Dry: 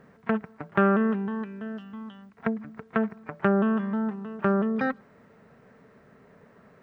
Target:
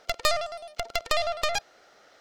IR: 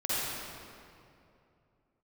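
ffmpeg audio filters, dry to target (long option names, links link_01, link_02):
-af "aeval=exprs='0.422*(cos(1*acos(clip(val(0)/0.422,-1,1)))-cos(1*PI/2))+0.0944*(cos(6*acos(clip(val(0)/0.422,-1,1)))-cos(6*PI/2))':channel_layout=same,asetrate=136710,aresample=44100,volume=-2dB"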